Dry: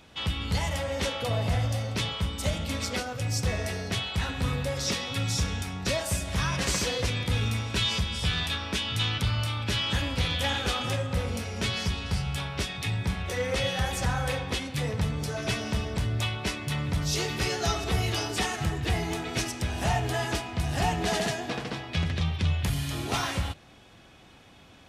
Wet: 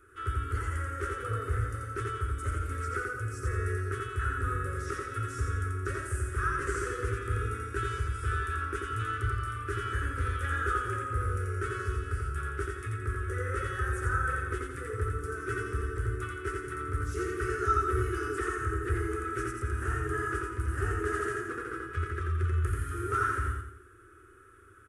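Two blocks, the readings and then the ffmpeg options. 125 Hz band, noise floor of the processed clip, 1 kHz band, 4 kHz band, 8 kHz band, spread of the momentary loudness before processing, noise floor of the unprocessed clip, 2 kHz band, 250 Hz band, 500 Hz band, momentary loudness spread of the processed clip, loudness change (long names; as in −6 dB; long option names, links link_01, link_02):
−3.5 dB, −54 dBFS, +0.5 dB, −22.0 dB, −11.5 dB, 4 LU, −53 dBFS, −1.5 dB, −7.5 dB, −3.0 dB, 5 LU, −4.0 dB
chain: -filter_complex "[0:a]acrossover=split=7300[link_01][link_02];[link_02]acompressor=threshold=-57dB:ratio=4:attack=1:release=60[link_03];[link_01][link_03]amix=inputs=2:normalize=0,firequalizer=gain_entry='entry(110,0);entry(160,-29);entry(380,9);entry(630,-26);entry(910,-22);entry(1300,12);entry(2200,-13);entry(4000,-27);entry(9800,7);entry(14000,-9)':delay=0.05:min_phase=1,asplit=2[link_04][link_05];[link_05]aecho=0:1:86|172|258|344|430:0.708|0.297|0.125|0.0525|0.022[link_06];[link_04][link_06]amix=inputs=2:normalize=0,volume=-3dB"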